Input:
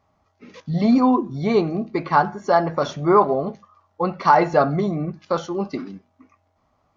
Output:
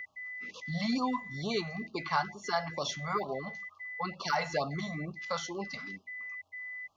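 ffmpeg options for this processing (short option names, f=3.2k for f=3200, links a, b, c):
-filter_complex "[0:a]tiltshelf=f=810:g=-6.5,aeval=exprs='val(0)+0.0224*sin(2*PI*2000*n/s)':c=same,acrossover=split=160|3000[a][b][c];[b]acompressor=threshold=-38dB:ratio=1.5[d];[a][d][c]amix=inputs=3:normalize=0,afftfilt=real='re*(1-between(b*sr/1024,300*pow(1900/300,0.5+0.5*sin(2*PI*2.2*pts/sr))/1.41,300*pow(1900/300,0.5+0.5*sin(2*PI*2.2*pts/sr))*1.41))':imag='im*(1-between(b*sr/1024,300*pow(1900/300,0.5+0.5*sin(2*PI*2.2*pts/sr))/1.41,300*pow(1900/300,0.5+0.5*sin(2*PI*2.2*pts/sr))*1.41))':win_size=1024:overlap=0.75,volume=-5dB"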